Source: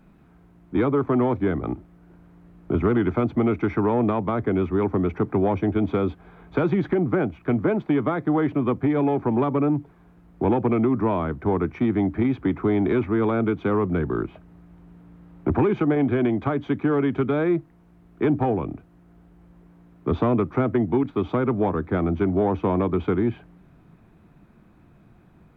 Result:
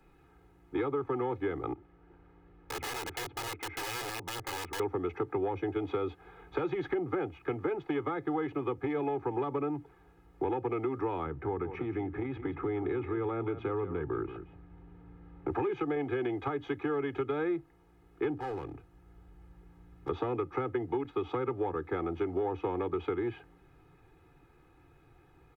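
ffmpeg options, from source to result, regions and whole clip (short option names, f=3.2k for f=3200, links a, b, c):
-filter_complex "[0:a]asettb=1/sr,asplit=3[a][b][c];[a]atrim=end=1.734[d];[b]atrim=start=1.73:end=4.8,asetpts=PTS-STARTPTS,afade=t=in:d=0.004:c=qsin,afade=t=out:st=3.066:d=0.004:c=qsin,lowpass=3.1k,acompressor=threshold=-45dB:ratio=1.5:attack=3.2:release=140:knee=1:detection=peak,aeval=exprs='(mod(23.7*val(0)+1,2)-1)/23.7':c=same[e];[c]atrim=start=4.796[f];[d][e]acrossfade=d=0.004:c1=hsin:c2=qsin[g];[g][f]acrossfade=d=0.004:c1=qsin:c2=hsin,asettb=1/sr,asplit=3[h][i][j];[h]atrim=end=11.264[k];[i]atrim=start=11.26:end=15.5,asetpts=PTS-STARTPTS,afade=t=in:d=0.004:c=qsin,afade=t=out:st=4.236:d=0.004:c=qsin,bass=f=250:g=8,treble=f=4k:g=-13,acompressor=threshold=-24dB:ratio=2:attack=3.2:release=140:knee=1:detection=peak,aecho=1:1:177:0.251,atrim=end_sample=186984[l];[j]atrim=start=15.496[m];[k][l]acrossfade=d=0.004:c1=hsin:c2=qsin[n];[n][m]acrossfade=d=0.004:c1=qsin:c2=hsin,asettb=1/sr,asplit=3[o][p][q];[o]atrim=end=18.374[r];[p]atrim=start=18.37:end=20.09,asetpts=PTS-STARTPTS,afade=t=in:d=0.004:c=qsin,afade=t=out:st=1.716:d=0.004:c=qsin,asubboost=boost=7:cutoff=190,acompressor=threshold=-31dB:ratio=2:attack=3.2:release=140:knee=1:detection=peak,volume=27.5dB,asoftclip=hard,volume=-27.5dB[s];[q]atrim=start=20.086[t];[r][s]acrossfade=d=0.004:c1=hsin:c2=qsin[u];[u][t]acrossfade=d=0.004:c1=qsin:c2=hsin,lowshelf=f=480:g=-5,aecho=1:1:2.4:0.89,acrossover=split=97|350[v][w][x];[v]acompressor=threshold=-50dB:ratio=4[y];[w]acompressor=threshold=-33dB:ratio=4[z];[x]acompressor=threshold=-28dB:ratio=4[aa];[y][z][aa]amix=inputs=3:normalize=0,volume=-4.5dB"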